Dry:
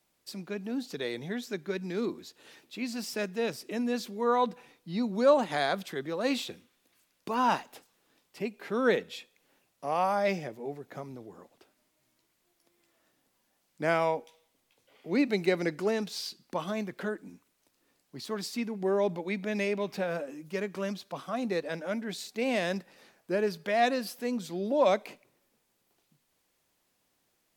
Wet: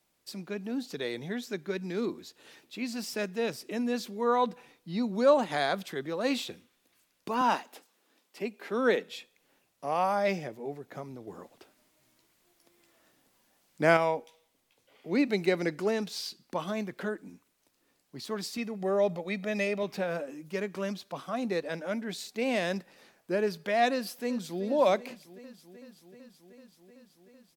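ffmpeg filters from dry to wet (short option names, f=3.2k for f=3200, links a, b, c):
-filter_complex "[0:a]asettb=1/sr,asplit=3[a][b][c];[a]atrim=end=7.414[d];[b]atrim=start=7.41:end=9.11,asetpts=PTS-STARTPTS,afade=t=in:d=0.004:c=qsin,afade=t=out:st=1.696:d=0.004:c=qsin,highpass=f=200:w=0.5412,highpass=f=200:w=1.3066[e];[c]atrim=start=9.106[f];[d][e]acrossfade=d=0.004:c1=hsin:c2=qsin[g];[g][f]acrossfade=d=0.004:c1=qsin:c2=hsin,asettb=1/sr,asplit=3[h][i][j];[h]atrim=end=11.274[k];[i]atrim=start=11.27:end=13.97,asetpts=PTS-STARTPTS,afade=t=in:d=0.004:c=qsin,afade=t=out:st=2.696:d=0.004:c=qsin,acontrast=30[l];[j]atrim=start=13.966[m];[k][l]acrossfade=d=0.004:c1=hsin:c2=qsin[n];[n][m]acrossfade=d=0.004:c1=qsin:c2=hsin,asettb=1/sr,asplit=3[o][p][q];[o]atrim=end=18.574[r];[p]atrim=start=18.57:end=19.83,asetpts=PTS-STARTPTS,afade=t=in:d=0.004:c=qsin,afade=t=out:st=1.256:d=0.004:c=qsin,aecho=1:1:1.6:0.52,atrim=end_sample=55566[s];[q]atrim=start=19.826[t];[r][s]acrossfade=d=0.004:c1=hsin:c2=qsin[u];[u][t]acrossfade=d=0.004:c1=qsin:c2=hsin,asplit=2[v][w];[w]afade=t=in:st=23.91:d=0.01,afade=t=out:st=24.62:d=0.01,aecho=0:1:380|760|1140|1520|1900|2280|2660|3040|3420|3800|4180|4560:0.188365|0.150692|0.120554|0.0964428|0.0771543|0.0617234|0.0493787|0.039503|0.0316024|0.0252819|0.0202255|0.0161804[x];[v][x]amix=inputs=2:normalize=0"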